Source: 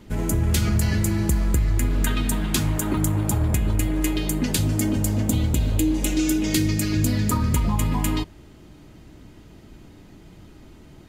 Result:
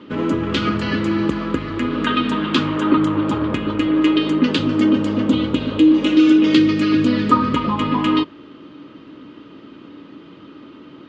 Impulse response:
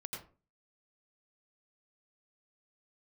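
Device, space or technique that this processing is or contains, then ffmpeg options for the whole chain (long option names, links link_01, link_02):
kitchen radio: -af "highpass=230,equalizer=frequency=280:width_type=q:width=4:gain=9,equalizer=frequency=510:width_type=q:width=4:gain=5,equalizer=frequency=730:width_type=q:width=4:gain=-9,equalizer=frequency=1200:width_type=q:width=4:gain=10,equalizer=frequency=2100:width_type=q:width=4:gain=-3,equalizer=frequency=3000:width_type=q:width=4:gain=5,lowpass=frequency=3900:width=0.5412,lowpass=frequency=3900:width=1.3066,volume=6.5dB"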